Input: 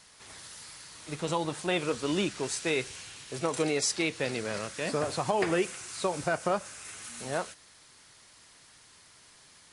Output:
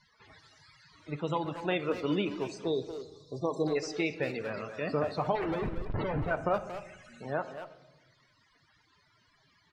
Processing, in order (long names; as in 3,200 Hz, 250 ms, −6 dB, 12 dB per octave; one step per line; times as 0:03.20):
0:02.65–0:03.76: time-frequency box erased 1,200–3,400 Hz
0:05.35–0:06.31: comparator with hysteresis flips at −33 dBFS
reverb reduction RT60 0.78 s
spectral peaks only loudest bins 64
high-frequency loss of the air 190 metres
far-end echo of a speakerphone 230 ms, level −8 dB
convolution reverb RT60 1.1 s, pre-delay 7 ms, DRR 10.5 dB